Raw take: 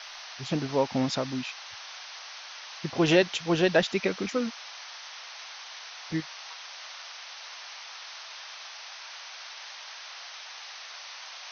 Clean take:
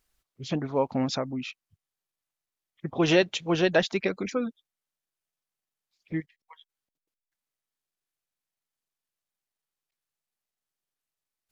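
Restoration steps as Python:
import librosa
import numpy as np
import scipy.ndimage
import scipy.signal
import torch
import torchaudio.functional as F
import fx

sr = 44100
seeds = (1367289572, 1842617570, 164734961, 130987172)

y = fx.noise_reduce(x, sr, print_start_s=4.89, print_end_s=5.39, reduce_db=30.0)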